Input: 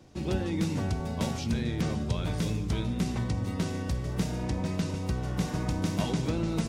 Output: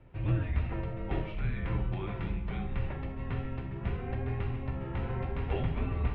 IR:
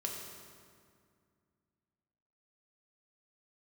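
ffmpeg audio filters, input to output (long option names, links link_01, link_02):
-filter_complex "[0:a]lowshelf=frequency=320:gain=5[link_01];[1:a]atrim=start_sample=2205,atrim=end_sample=3969[link_02];[link_01][link_02]afir=irnorm=-1:irlink=0,highpass=frequency=210:width_type=q:width=0.5412,highpass=frequency=210:width_type=q:width=1.307,lowpass=frequency=2700:width_type=q:width=0.5176,lowpass=frequency=2700:width_type=q:width=0.7071,lowpass=frequency=2700:width_type=q:width=1.932,afreqshift=-260,asetrate=48000,aresample=44100"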